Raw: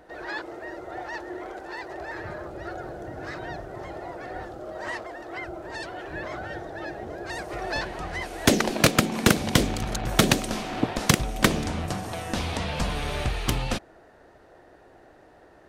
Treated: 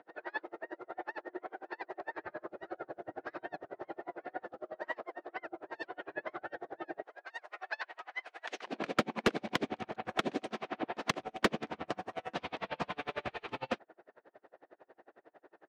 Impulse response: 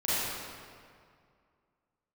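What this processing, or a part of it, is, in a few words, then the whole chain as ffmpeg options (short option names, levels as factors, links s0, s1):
helicopter radio: -filter_complex "[0:a]highpass=300,lowpass=2600,aeval=exprs='val(0)*pow(10,-35*(0.5-0.5*cos(2*PI*11*n/s))/20)':c=same,asoftclip=type=hard:threshold=0.119,asettb=1/sr,asplit=3[s0][s1][s2];[s0]atrim=end=7.024[s3];[s1]atrim=start=7.02:end=8.67,asetpts=PTS-STARTPTS,afade=t=in:d=0.004:c=qsin,afade=t=out:st=1.646:d=0.004:c=qsin,highpass=990[s4];[s2]atrim=start=8.666[s5];[s3][s4]acrossfade=d=0.004:c1=hsin:c2=qsin[s6];[s6][s5]acrossfade=d=0.004:c1=qsin:c2=hsin"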